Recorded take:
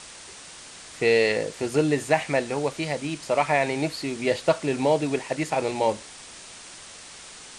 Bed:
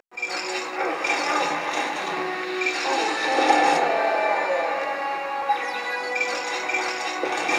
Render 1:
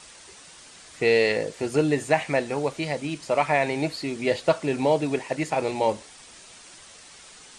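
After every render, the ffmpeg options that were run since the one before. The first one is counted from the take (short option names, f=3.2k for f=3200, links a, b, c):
-af "afftdn=nr=6:nf=-44"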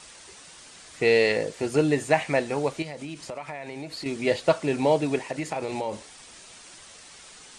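-filter_complex "[0:a]asettb=1/sr,asplit=3[a][b][c];[a]atrim=end=2.824[d];[b]atrim=start=2.82:end=4.06,asetpts=PTS-STARTPTS,afade=t=in:d=0.004:c=qsin,afade=t=out:st=1.236:d=0.004:c=qsin,acompressor=threshold=-32dB:ratio=8:attack=3.2:release=140:knee=1:detection=peak[e];[c]atrim=start=4.056[f];[d][e]acrossfade=d=0.004:c1=hsin:c2=qsin[g];[g][f]acrossfade=d=0.004:c1=qsin:c2=hsin,asettb=1/sr,asplit=3[h][i][j];[h]atrim=end=5.234[k];[i]atrim=start=5.23:end=5.93,asetpts=PTS-STARTPTS,afade=t=in:d=0.004:c=qsin,afade=t=out:st=0.696:d=0.004:c=qsin,acompressor=threshold=-25dB:ratio=6:attack=3.2:release=140:knee=1:detection=peak[l];[j]atrim=start=5.926[m];[k][l]acrossfade=d=0.004:c1=hsin:c2=qsin[n];[n][m]acrossfade=d=0.004:c1=qsin:c2=hsin"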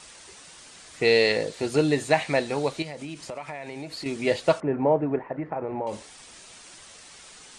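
-filter_complex "[0:a]asettb=1/sr,asplit=3[a][b][c];[a]atrim=end=1.044[d];[b]atrim=start=1.04:end=2.83,asetpts=PTS-STARTPTS,afade=t=in:d=0.004:c=qsin,afade=t=out:st=1.786:d=0.004:c=qsin,equalizer=f=4k:t=o:w=0.36:g=7.5[e];[c]atrim=start=2.826[f];[d][e]acrossfade=d=0.004:c1=hsin:c2=qsin[g];[g][f]acrossfade=d=0.004:c1=qsin:c2=hsin,asettb=1/sr,asplit=3[h][i][j];[h]atrim=end=4.604[k];[i]atrim=start=4.6:end=5.87,asetpts=PTS-STARTPTS,afade=t=in:d=0.004:c=qsin,afade=t=out:st=1.266:d=0.004:c=qsin,lowpass=f=1.6k:w=0.5412,lowpass=f=1.6k:w=1.3066[l];[j]atrim=start=5.866[m];[k][l]acrossfade=d=0.004:c1=hsin:c2=qsin[n];[n][m]acrossfade=d=0.004:c1=qsin:c2=hsin"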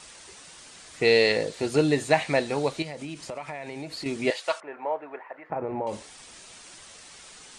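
-filter_complex "[0:a]asettb=1/sr,asplit=3[a][b][c];[a]atrim=end=4.304[d];[b]atrim=start=4.3:end=5.5,asetpts=PTS-STARTPTS,afade=t=in:d=0.004:c=qsin,afade=t=out:st=1.196:d=0.004:c=qsin,highpass=910[e];[c]atrim=start=5.496[f];[d][e]acrossfade=d=0.004:c1=hsin:c2=qsin[g];[g][f]acrossfade=d=0.004:c1=qsin:c2=hsin"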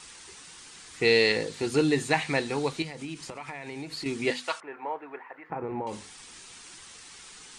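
-af "equalizer=f=610:w=3.7:g=-12,bandreject=f=50:t=h:w=6,bandreject=f=100:t=h:w=6,bandreject=f=150:t=h:w=6,bandreject=f=200:t=h:w=6,bandreject=f=250:t=h:w=6"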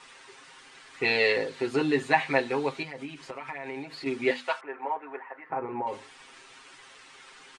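-af "bass=f=250:g=-12,treble=f=4k:g=-15,aecho=1:1:7.5:0.93"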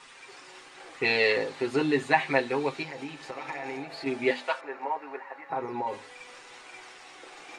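-filter_complex "[1:a]volume=-24dB[a];[0:a][a]amix=inputs=2:normalize=0"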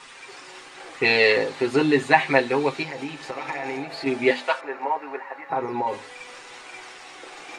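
-af "volume=6dB"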